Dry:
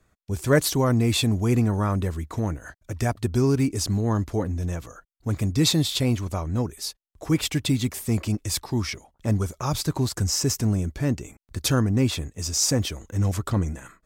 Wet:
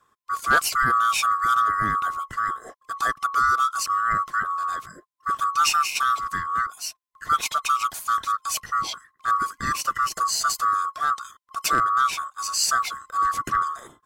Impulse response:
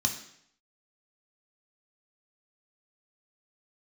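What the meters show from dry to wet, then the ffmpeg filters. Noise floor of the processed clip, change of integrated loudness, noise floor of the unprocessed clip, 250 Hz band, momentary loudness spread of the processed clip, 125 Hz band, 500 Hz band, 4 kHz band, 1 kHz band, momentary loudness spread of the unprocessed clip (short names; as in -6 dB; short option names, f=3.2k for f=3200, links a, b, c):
-68 dBFS, +1.5 dB, -68 dBFS, -19.5 dB, 10 LU, -22.0 dB, -14.0 dB, -1.0 dB, +16.0 dB, 10 LU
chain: -af "afftfilt=real='real(if(lt(b,960),b+48*(1-2*mod(floor(b/48),2)),b),0)':imag='imag(if(lt(b,960),b+48*(1-2*mod(floor(b/48),2)),b),0)':win_size=2048:overlap=0.75,volume=11.5dB,asoftclip=hard,volume=-11.5dB"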